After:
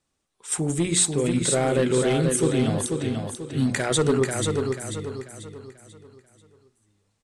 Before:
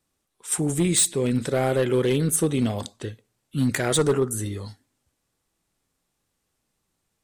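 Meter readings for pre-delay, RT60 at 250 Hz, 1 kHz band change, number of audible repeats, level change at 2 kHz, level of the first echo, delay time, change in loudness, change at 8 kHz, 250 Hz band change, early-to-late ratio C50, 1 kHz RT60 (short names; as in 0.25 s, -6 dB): none, none, +1.5 dB, 4, +1.5 dB, -4.5 dB, 0.489 s, 0.0 dB, 0.0 dB, +0.5 dB, none, none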